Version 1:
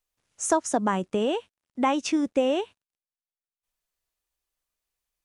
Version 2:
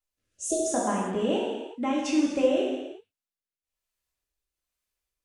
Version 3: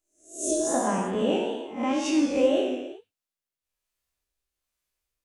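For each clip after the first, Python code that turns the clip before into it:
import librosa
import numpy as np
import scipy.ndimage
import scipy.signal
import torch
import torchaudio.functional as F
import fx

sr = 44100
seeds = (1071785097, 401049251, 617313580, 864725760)

y1 = fx.spec_repair(x, sr, seeds[0], start_s=0.34, length_s=0.31, low_hz=660.0, high_hz=2600.0, source='before')
y1 = fx.rotary(y1, sr, hz=1.2)
y1 = fx.rev_gated(y1, sr, seeds[1], gate_ms=410, shape='falling', drr_db=-5.0)
y1 = y1 * 10.0 ** (-4.5 / 20.0)
y2 = fx.spec_swells(y1, sr, rise_s=0.43)
y2 = fx.wow_flutter(y2, sr, seeds[2], rate_hz=2.1, depth_cents=51.0)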